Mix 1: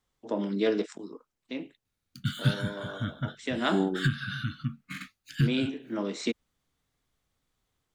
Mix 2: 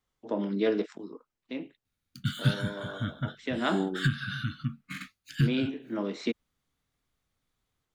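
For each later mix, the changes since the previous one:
first voice: add air absorption 130 m; second voice -3.0 dB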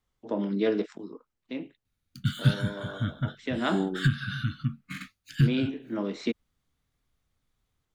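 master: add low shelf 130 Hz +7 dB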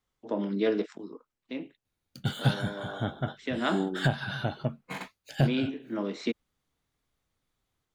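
background: remove brick-wall FIR band-stop 310–1100 Hz; master: add low shelf 130 Hz -7 dB

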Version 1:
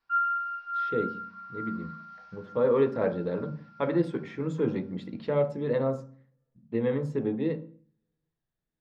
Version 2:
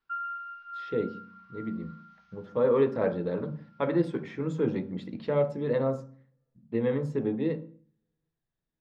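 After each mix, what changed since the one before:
background: send off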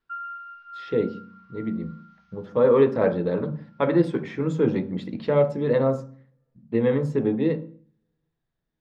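speech +6.0 dB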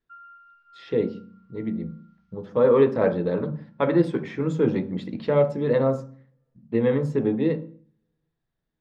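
background -12.0 dB

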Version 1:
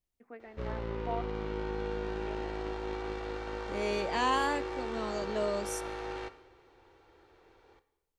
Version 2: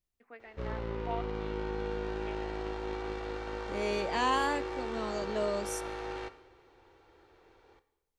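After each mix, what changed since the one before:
first voice: add tilt +3.5 dB/oct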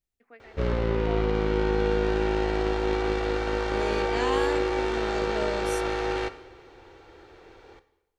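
background +11.5 dB; master: add bell 1000 Hz -3.5 dB 0.53 oct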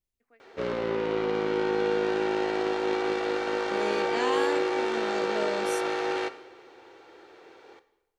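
first voice -11.0 dB; background: add HPF 260 Hz 12 dB/oct

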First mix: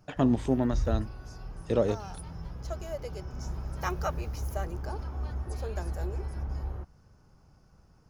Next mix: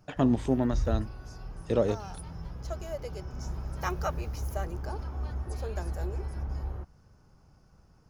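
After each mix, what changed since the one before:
none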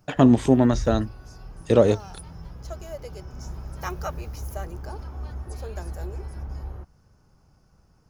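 speech +9.0 dB; master: add high shelf 7300 Hz +5 dB

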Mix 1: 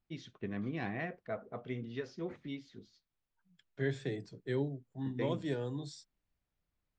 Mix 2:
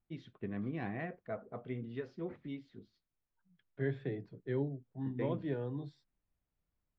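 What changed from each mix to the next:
first voice: remove LPF 3300 Hz 12 dB/oct; master: add air absorption 470 m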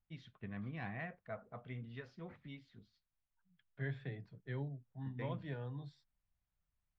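master: add bell 350 Hz -14 dB 1.3 oct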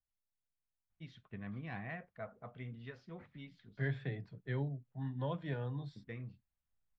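first voice: entry +0.90 s; second voice +4.5 dB

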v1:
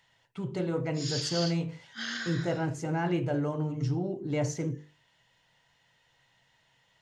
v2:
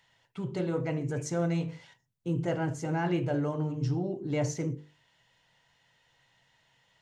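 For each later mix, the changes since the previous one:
background: muted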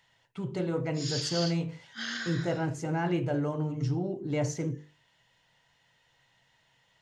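background: unmuted

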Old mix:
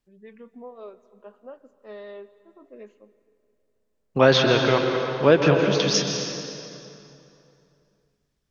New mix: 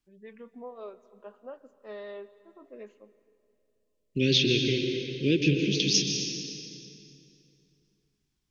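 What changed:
second voice: add elliptic band-stop 360–2500 Hz, stop band 50 dB; master: add low shelf 330 Hz -3.5 dB

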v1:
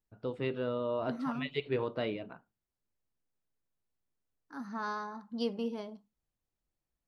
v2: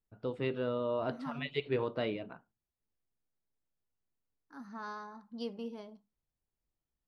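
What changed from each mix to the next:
second voice -6.0 dB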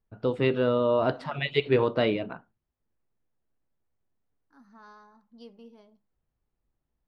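first voice +10.0 dB; second voice -8.5 dB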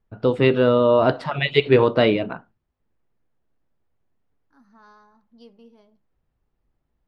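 first voice +7.5 dB

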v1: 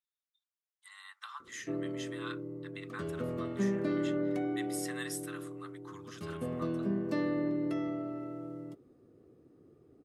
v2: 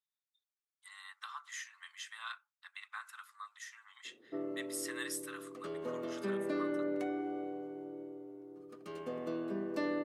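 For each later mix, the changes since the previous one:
background: entry +2.65 s; master: add HPF 340 Hz 12 dB/oct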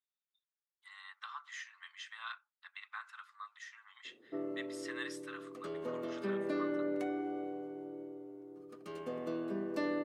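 speech: add LPF 4400 Hz 12 dB/oct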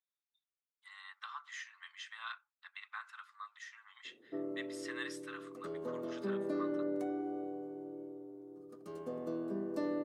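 background: add bell 2500 Hz -12.5 dB 1.6 oct

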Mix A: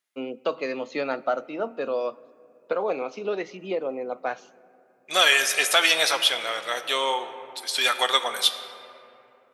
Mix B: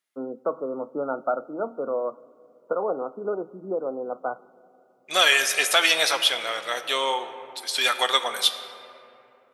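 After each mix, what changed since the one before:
first voice: add brick-wall FIR low-pass 1500 Hz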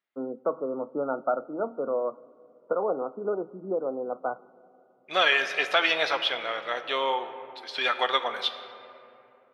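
master: add air absorption 290 m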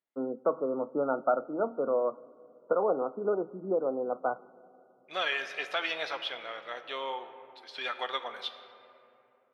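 second voice -9.0 dB

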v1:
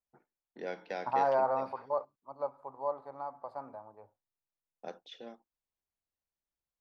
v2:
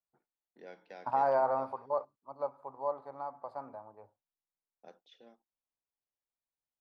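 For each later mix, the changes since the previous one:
first voice -11.0 dB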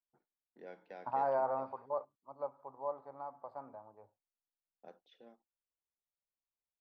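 second voice -4.0 dB; master: add LPF 2000 Hz 6 dB/oct

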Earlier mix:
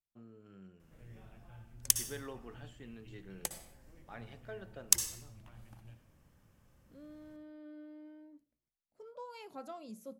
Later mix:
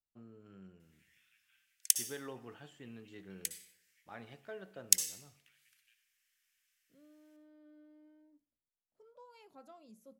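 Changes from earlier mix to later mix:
second voice -10.0 dB; background: add steep high-pass 1800 Hz 36 dB/oct

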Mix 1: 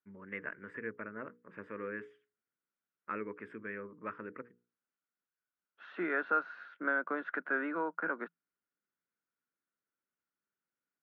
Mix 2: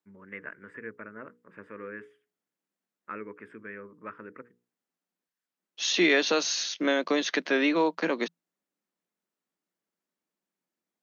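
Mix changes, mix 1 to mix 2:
second voice: remove ladder low-pass 1500 Hz, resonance 85%; master: remove air absorption 66 m

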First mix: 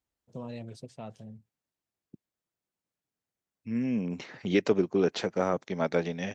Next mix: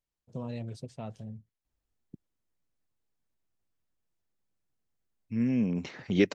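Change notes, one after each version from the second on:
second voice: entry +1.65 s; master: remove HPF 180 Hz 6 dB/oct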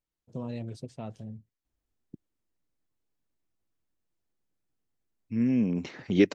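master: add bell 310 Hz +4.5 dB 0.72 oct

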